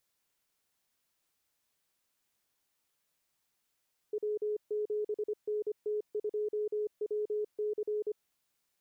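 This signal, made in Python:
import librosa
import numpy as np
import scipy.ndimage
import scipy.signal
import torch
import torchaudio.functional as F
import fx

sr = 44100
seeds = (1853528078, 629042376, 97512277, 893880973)

y = fx.morse(sr, text='W7NT2WC', wpm=25, hz=422.0, level_db=-30.0)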